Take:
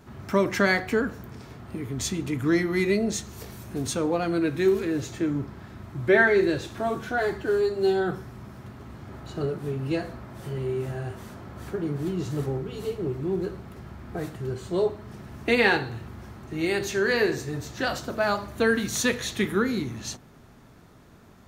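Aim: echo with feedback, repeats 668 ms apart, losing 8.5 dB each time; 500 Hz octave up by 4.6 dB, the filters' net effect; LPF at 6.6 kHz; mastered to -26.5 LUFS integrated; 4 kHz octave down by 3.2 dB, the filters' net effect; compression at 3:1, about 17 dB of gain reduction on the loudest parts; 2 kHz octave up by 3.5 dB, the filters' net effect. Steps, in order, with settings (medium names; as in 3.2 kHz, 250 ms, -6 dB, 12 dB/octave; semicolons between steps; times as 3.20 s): low-pass 6.6 kHz; peaking EQ 500 Hz +6 dB; peaking EQ 2 kHz +5 dB; peaking EQ 4 kHz -5 dB; compression 3:1, threshold -36 dBFS; feedback delay 668 ms, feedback 38%, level -8.5 dB; trim +9.5 dB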